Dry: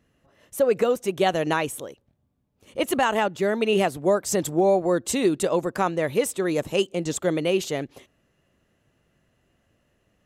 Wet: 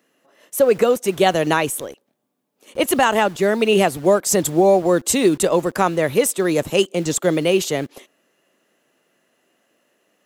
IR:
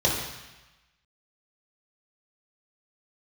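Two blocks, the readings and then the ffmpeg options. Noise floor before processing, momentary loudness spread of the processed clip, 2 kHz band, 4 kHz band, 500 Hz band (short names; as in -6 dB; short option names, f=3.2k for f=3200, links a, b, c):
-70 dBFS, 9 LU, +6.0 dB, +6.5 dB, +5.5 dB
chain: -filter_complex "[0:a]highshelf=f=7.3k:g=6,acrossover=split=230|2200[a][b][c];[a]acrusher=bits=7:mix=0:aa=0.000001[d];[d][b][c]amix=inputs=3:normalize=0,volume=5.5dB"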